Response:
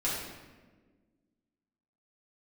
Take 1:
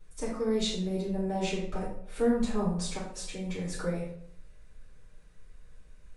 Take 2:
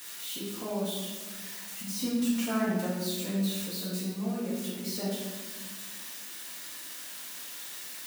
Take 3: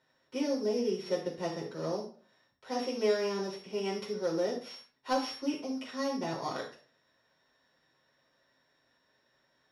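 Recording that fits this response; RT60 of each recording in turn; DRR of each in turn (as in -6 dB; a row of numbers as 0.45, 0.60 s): 2; 0.65, 1.4, 0.40 s; -10.5, -8.5, -3.0 dB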